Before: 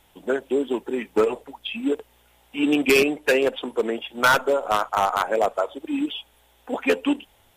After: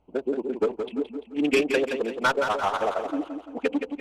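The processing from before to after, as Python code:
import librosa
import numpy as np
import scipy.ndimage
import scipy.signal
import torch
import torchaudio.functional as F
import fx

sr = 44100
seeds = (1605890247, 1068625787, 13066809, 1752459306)

p1 = fx.wiener(x, sr, points=25)
p2 = scipy.signal.sosfilt(scipy.signal.butter(2, 8600.0, 'lowpass', fs=sr, output='sos'), p1)
p3 = p2 + fx.echo_feedback(p2, sr, ms=323, feedback_pct=46, wet_db=-7.0, dry=0)
p4 = fx.stretch_vocoder(p3, sr, factor=0.53)
y = F.gain(torch.from_numpy(p4), -2.5).numpy()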